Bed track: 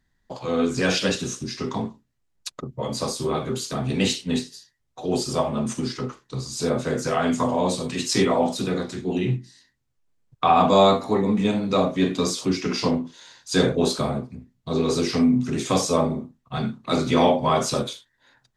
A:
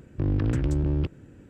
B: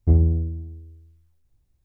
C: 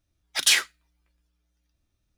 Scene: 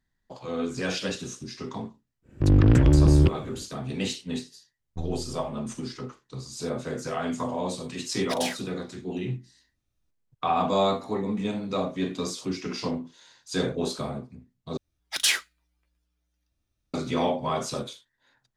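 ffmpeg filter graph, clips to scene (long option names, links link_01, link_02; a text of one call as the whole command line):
ffmpeg -i bed.wav -i cue0.wav -i cue1.wav -i cue2.wav -filter_complex "[3:a]asplit=2[link_01][link_02];[0:a]volume=-7.5dB[link_03];[1:a]dynaudnorm=framelen=150:gausssize=3:maxgain=10.5dB[link_04];[2:a]aeval=exprs='max(val(0),0)':channel_layout=same[link_05];[link_01]alimiter=limit=-16dB:level=0:latency=1:release=364[link_06];[link_03]asplit=2[link_07][link_08];[link_07]atrim=end=14.774[link_09];[link_02]atrim=end=2.17,asetpts=PTS-STARTPTS,volume=-3.5dB[link_10];[link_08]atrim=start=16.936[link_11];[link_04]atrim=end=1.49,asetpts=PTS-STARTPTS,volume=-2.5dB,afade=type=in:duration=0.1,afade=type=out:start_time=1.39:duration=0.1,adelay=2220[link_12];[link_05]atrim=end=1.84,asetpts=PTS-STARTPTS,volume=-13.5dB,afade=type=in:duration=0.004:curve=hsin,afade=type=out:start_time=1.836:duration=0.004:curve=hsin,adelay=215649S[link_13];[link_06]atrim=end=2.17,asetpts=PTS-STARTPTS,volume=-5.5dB,afade=type=in:duration=0.004:curve=hsin,afade=type=out:start_time=2.166:duration=0.004:curve=hsin,adelay=350154S[link_14];[link_09][link_10]acrossfade=duration=0.004:curve1=hsin:curve2=hsin[link_15];[link_15][link_11]acrossfade=duration=0.004:curve1=hsin:curve2=hsin[link_16];[link_16][link_12][link_13][link_14]amix=inputs=4:normalize=0" out.wav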